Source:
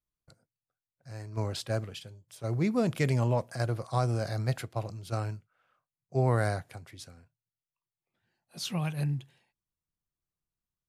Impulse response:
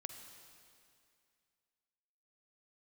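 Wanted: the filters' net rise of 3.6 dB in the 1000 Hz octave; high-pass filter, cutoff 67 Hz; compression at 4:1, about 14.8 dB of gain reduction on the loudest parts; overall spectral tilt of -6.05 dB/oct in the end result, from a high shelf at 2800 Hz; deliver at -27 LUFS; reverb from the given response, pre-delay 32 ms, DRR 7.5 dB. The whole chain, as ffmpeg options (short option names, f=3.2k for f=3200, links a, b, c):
-filter_complex "[0:a]highpass=67,equalizer=f=1k:t=o:g=5.5,highshelf=f=2.8k:g=-5.5,acompressor=threshold=-40dB:ratio=4,asplit=2[a][b];[1:a]atrim=start_sample=2205,adelay=32[c];[b][c]afir=irnorm=-1:irlink=0,volume=-4dB[d];[a][d]amix=inputs=2:normalize=0,volume=16dB"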